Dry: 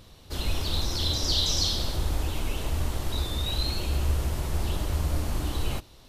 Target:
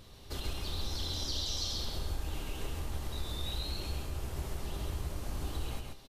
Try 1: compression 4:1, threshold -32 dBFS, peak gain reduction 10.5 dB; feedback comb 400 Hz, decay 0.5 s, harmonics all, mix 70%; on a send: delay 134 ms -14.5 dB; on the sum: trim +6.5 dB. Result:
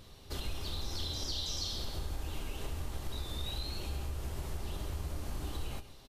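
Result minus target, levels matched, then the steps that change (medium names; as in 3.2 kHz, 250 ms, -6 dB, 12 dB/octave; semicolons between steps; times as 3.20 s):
echo-to-direct -11 dB
change: delay 134 ms -3.5 dB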